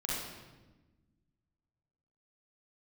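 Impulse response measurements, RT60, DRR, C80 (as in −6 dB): 1.2 s, −6.0 dB, 1.0 dB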